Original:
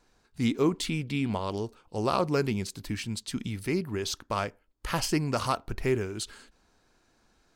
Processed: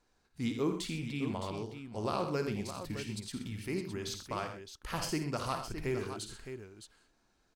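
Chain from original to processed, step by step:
multi-tap delay 55/83/126/614 ms −9.5/−10/−13/−9.5 dB
level −8 dB

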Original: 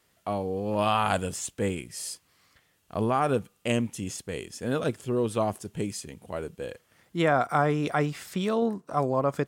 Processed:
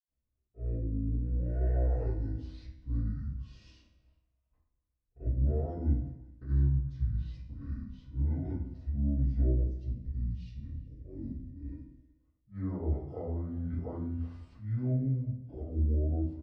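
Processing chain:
gain on a spectral selection 0:05.39–0:06.98, 1,100–3,000 Hz −13 dB
noise gate −58 dBFS, range −16 dB
spectral tilt −4.5 dB per octave
hum removal 77.23 Hz, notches 2
volume swells 113 ms
downward compressor 3 to 1, threshold −21 dBFS, peak gain reduction 7 dB
tuned comb filter 110 Hz, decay 0.47 s, harmonics all, mix 70%
wrong playback speed 78 rpm record played at 45 rpm
far-end echo of a speakerphone 370 ms, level −21 dB
convolution reverb RT60 0.45 s, pre-delay 76 ms
level −4 dB

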